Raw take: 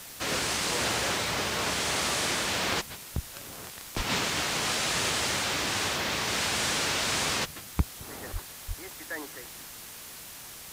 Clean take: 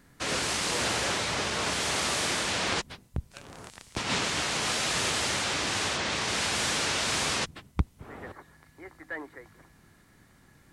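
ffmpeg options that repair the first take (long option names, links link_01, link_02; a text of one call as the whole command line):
ffmpeg -i in.wav -filter_complex "[0:a]adeclick=threshold=4,asplit=3[link_01][link_02][link_03];[link_01]afade=type=out:start_time=3.96:duration=0.02[link_04];[link_02]highpass=frequency=140:width=0.5412,highpass=frequency=140:width=1.3066,afade=type=in:start_time=3.96:duration=0.02,afade=type=out:start_time=4.08:duration=0.02[link_05];[link_03]afade=type=in:start_time=4.08:duration=0.02[link_06];[link_04][link_05][link_06]amix=inputs=3:normalize=0,asplit=3[link_07][link_08][link_09];[link_07]afade=type=out:start_time=8.32:duration=0.02[link_10];[link_08]highpass=frequency=140:width=0.5412,highpass=frequency=140:width=1.3066,afade=type=in:start_time=8.32:duration=0.02,afade=type=out:start_time=8.44:duration=0.02[link_11];[link_09]afade=type=in:start_time=8.44:duration=0.02[link_12];[link_10][link_11][link_12]amix=inputs=3:normalize=0,asplit=3[link_13][link_14][link_15];[link_13]afade=type=out:start_time=8.67:duration=0.02[link_16];[link_14]highpass=frequency=140:width=0.5412,highpass=frequency=140:width=1.3066,afade=type=in:start_time=8.67:duration=0.02,afade=type=out:start_time=8.79:duration=0.02[link_17];[link_15]afade=type=in:start_time=8.79:duration=0.02[link_18];[link_16][link_17][link_18]amix=inputs=3:normalize=0,afwtdn=0.0071" out.wav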